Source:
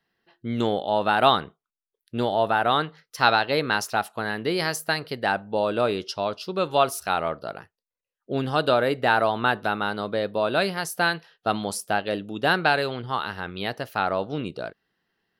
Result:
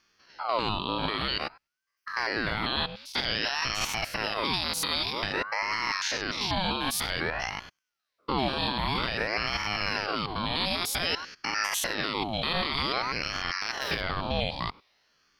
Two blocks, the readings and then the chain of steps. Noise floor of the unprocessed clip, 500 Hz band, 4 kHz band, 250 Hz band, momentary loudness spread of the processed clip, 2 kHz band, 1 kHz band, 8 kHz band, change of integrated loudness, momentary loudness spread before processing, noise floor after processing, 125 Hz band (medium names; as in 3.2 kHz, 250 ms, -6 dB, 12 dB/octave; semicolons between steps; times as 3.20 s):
under -85 dBFS, -11.0 dB, +2.0 dB, -6.0 dB, 4 LU, -3.5 dB, -7.0 dB, +1.5 dB, -4.5 dB, 10 LU, -83 dBFS, -4.0 dB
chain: spectrogram pixelated in time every 100 ms; high-order bell 3.6 kHz +12 dB 1 oct; in parallel at +1.5 dB: compressor with a negative ratio -29 dBFS; on the sum: peak limiter -12.5 dBFS, peak gain reduction 10.5 dB; ring modulator with a swept carrier 960 Hz, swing 65%, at 0.52 Hz; trim -2.5 dB